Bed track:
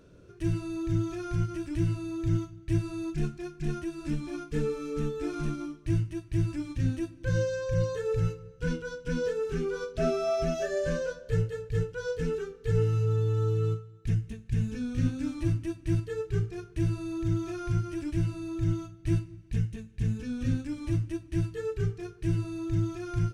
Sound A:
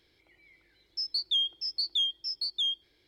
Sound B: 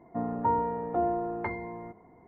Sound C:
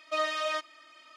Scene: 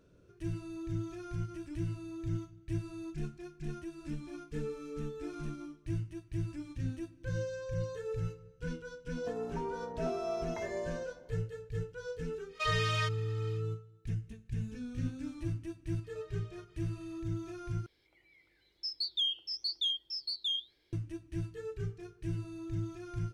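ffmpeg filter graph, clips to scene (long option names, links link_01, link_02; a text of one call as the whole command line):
ffmpeg -i bed.wav -i cue0.wav -i cue1.wav -i cue2.wav -filter_complex "[3:a]asplit=2[link_01][link_02];[0:a]volume=-8.5dB[link_03];[2:a]acompressor=threshold=-32dB:ratio=6:attack=3.2:release=140:knee=1:detection=peak[link_04];[link_01]highpass=1200[link_05];[link_02]acompressor=threshold=-44dB:ratio=6:attack=3.2:release=140:knee=1:detection=peak[link_06];[1:a]flanger=delay=4.3:depth=5.4:regen=-83:speed=0.96:shape=sinusoidal[link_07];[link_03]asplit=2[link_08][link_09];[link_08]atrim=end=17.864[link_10];[link_07]atrim=end=3.07[link_11];[link_09]atrim=start=20.926[link_12];[link_04]atrim=end=2.27,asetpts=PTS-STARTPTS,volume=-6.5dB,afade=type=in:duration=0.004:curve=hsin,afade=type=out:start_time=2.266:duration=0.004:curve=hsin,adelay=9120[link_13];[link_05]atrim=end=1.16,asetpts=PTS-STARTPTS,afade=type=in:duration=0.1,afade=type=out:start_time=1.06:duration=0.1,adelay=12480[link_14];[link_06]atrim=end=1.16,asetpts=PTS-STARTPTS,volume=-13.5dB,afade=type=in:duration=0.004:curve=hsin,afade=type=out:start_time=1.156:duration=0.004:curve=hsin,adelay=707364S[link_15];[link_10][link_11]acrossfade=duration=0.004:curve1=hsin:curve2=hsin[link_16];[link_16][link_12]acrossfade=duration=0.004:curve1=hsin:curve2=hsin[link_17];[link_17][link_13][link_14][link_15]amix=inputs=4:normalize=0" out.wav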